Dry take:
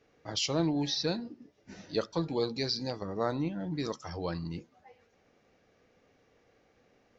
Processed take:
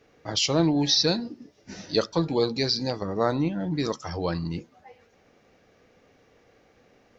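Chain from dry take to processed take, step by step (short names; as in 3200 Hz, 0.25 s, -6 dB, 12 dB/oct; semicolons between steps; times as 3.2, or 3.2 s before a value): 0.89–2.1 bell 5300 Hz +6 dB 0.97 oct; gain +7 dB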